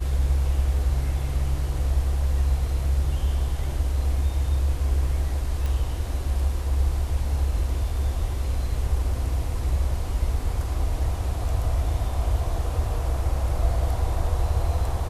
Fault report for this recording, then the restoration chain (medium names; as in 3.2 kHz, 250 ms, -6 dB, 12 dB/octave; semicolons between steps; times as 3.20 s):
5.66 s: pop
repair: de-click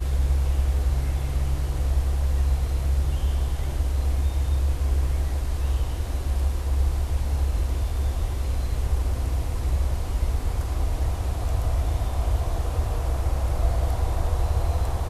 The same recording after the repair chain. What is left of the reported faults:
nothing left